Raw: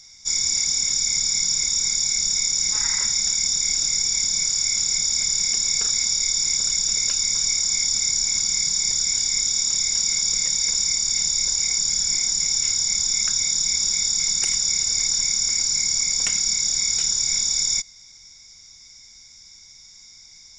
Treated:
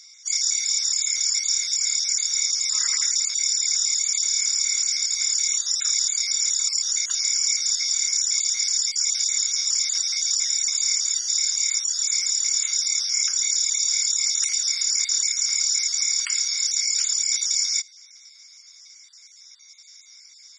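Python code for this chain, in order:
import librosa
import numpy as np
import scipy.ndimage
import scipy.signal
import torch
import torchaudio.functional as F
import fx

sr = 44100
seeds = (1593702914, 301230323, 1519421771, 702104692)

y = fx.spec_dropout(x, sr, seeds[0], share_pct=24)
y = scipy.signal.sosfilt(scipy.signal.butter(8, 1100.0, 'highpass', fs=sr, output='sos'), y)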